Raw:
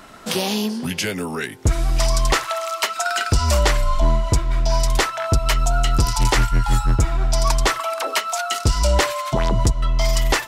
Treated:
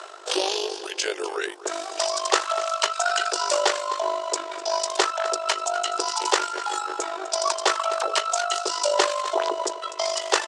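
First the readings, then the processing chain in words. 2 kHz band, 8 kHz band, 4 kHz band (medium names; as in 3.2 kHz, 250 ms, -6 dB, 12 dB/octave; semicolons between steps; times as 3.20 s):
-3.5 dB, -1.5 dB, -1.0 dB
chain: peaking EQ 2.1 kHz -7.5 dB 0.53 oct; in parallel at -12 dB: short-mantissa float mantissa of 2-bit; on the sum: Chebyshev high-pass 350 Hz, order 8; delay 251 ms -16 dB; reverse; upward compressor, threshold -25 dBFS; reverse; AM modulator 50 Hz, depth 55%; steep low-pass 8.7 kHz 36 dB/octave; trim +1.5 dB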